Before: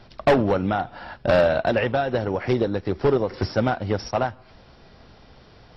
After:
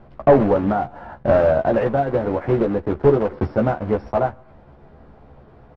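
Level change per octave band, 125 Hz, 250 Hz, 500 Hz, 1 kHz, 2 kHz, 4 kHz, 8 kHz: +3.0 dB, +4.0 dB, +4.0 dB, +2.5 dB, -3.5 dB, under -10 dB, no reading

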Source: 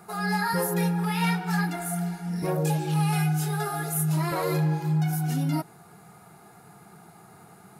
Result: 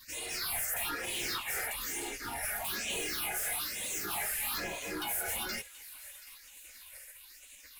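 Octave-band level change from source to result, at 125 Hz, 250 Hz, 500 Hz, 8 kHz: -30.0 dB, -21.0 dB, -12.5 dB, +1.5 dB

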